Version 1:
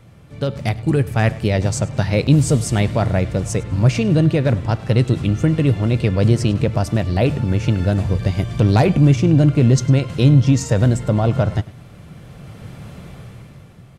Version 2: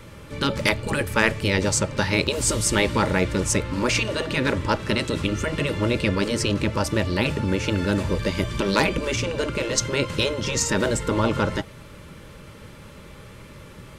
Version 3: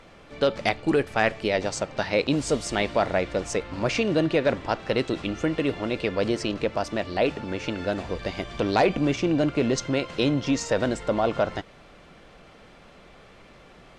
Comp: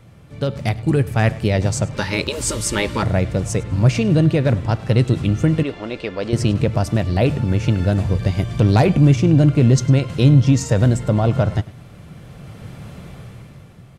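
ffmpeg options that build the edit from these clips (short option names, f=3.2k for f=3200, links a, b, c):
-filter_complex "[0:a]asplit=3[a][b][c];[a]atrim=end=1.942[d];[1:a]atrim=start=1.938:end=3.032[e];[b]atrim=start=3.028:end=5.632[f];[2:a]atrim=start=5.628:end=6.332[g];[c]atrim=start=6.328[h];[d][e]acrossfade=d=0.004:c1=hsin:c2=hsin[i];[i][f]acrossfade=d=0.004:c1=hsin:c2=hsin[j];[j][g]acrossfade=d=0.004:c1=hsin:c2=hsin[k];[k][h]acrossfade=d=0.004:c1=hsin:c2=hsin"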